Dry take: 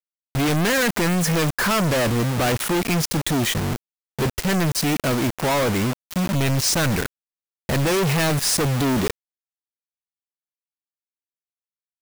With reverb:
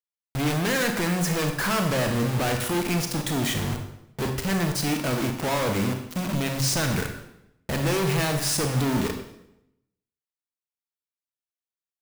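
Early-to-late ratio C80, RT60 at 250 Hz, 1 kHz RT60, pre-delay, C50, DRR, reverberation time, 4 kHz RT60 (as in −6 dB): 9.0 dB, 0.90 s, 0.80 s, 28 ms, 7.0 dB, 4.5 dB, 0.85 s, 0.70 s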